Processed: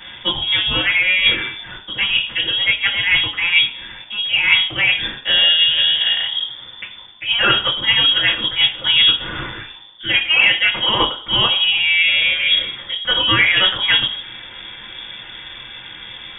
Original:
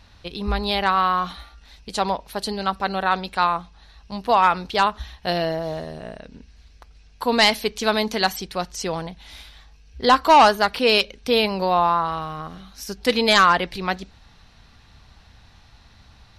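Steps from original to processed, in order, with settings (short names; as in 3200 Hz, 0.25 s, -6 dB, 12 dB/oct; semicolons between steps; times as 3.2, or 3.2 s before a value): reverse; compressor 6:1, threshold -32 dBFS, peak gain reduction 20.5 dB; reverse; reverb RT60 0.45 s, pre-delay 3 ms, DRR -11.5 dB; inverted band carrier 3500 Hz; gain +6 dB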